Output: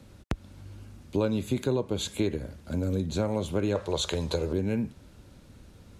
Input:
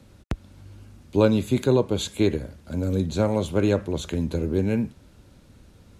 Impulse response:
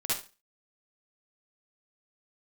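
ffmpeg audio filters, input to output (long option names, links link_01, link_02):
-filter_complex "[0:a]asettb=1/sr,asplit=3[link_01][link_02][link_03];[link_01]atrim=end=3.754[link_04];[link_02]atrim=start=3.75:end=4.53,asetpts=PTS-STARTPTS,afade=type=in:duration=0.004:curve=qsin,afade=type=out:start_time=0.776:duration=0.004:curve=qsin,equalizer=frequency=250:width_type=o:width=1:gain=-10,equalizer=frequency=500:width_type=o:width=1:gain=7,equalizer=frequency=1000:width_type=o:width=1:gain=8,equalizer=frequency=4000:width_type=o:width=1:gain=10,equalizer=frequency=8000:width_type=o:width=1:gain=6[link_05];[link_03]atrim=start=4.526[link_06];[link_04][link_05]acrossfade=duration=0.004:curve1=hsin:curve2=qsin[link_07];[link_07][link_06]acrossfade=duration=0.004:curve1=qsin:curve2=hsin,acompressor=threshold=-26dB:ratio=2.5"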